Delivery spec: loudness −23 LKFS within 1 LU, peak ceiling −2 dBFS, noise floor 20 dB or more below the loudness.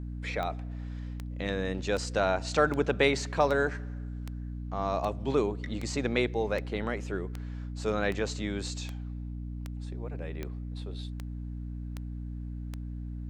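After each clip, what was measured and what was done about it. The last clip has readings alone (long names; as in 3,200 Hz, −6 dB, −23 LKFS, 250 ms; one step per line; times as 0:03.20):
number of clicks 17; mains hum 60 Hz; hum harmonics up to 300 Hz; level of the hum −35 dBFS; integrated loudness −32.5 LKFS; sample peak −10.0 dBFS; target loudness −23.0 LKFS
→ click removal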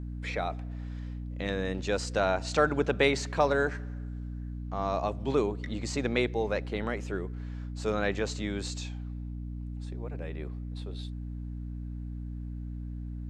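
number of clicks 0; mains hum 60 Hz; hum harmonics up to 300 Hz; level of the hum −35 dBFS
→ mains-hum notches 60/120/180/240/300 Hz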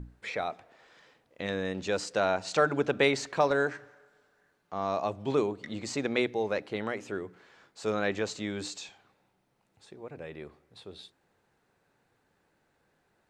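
mains hum none found; integrated loudness −30.5 LKFS; sample peak −11.0 dBFS; target loudness −23.0 LKFS
→ level +7.5 dB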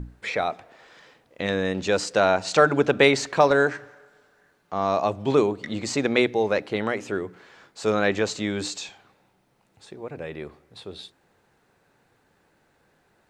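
integrated loudness −23.5 LKFS; sample peak −3.5 dBFS; background noise floor −66 dBFS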